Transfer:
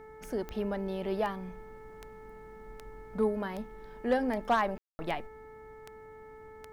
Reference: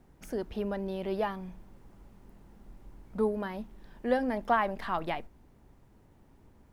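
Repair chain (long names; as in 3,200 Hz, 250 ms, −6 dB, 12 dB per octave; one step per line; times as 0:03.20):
clipped peaks rebuilt −19 dBFS
click removal
hum removal 436.2 Hz, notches 5
ambience match 0:04.78–0:04.99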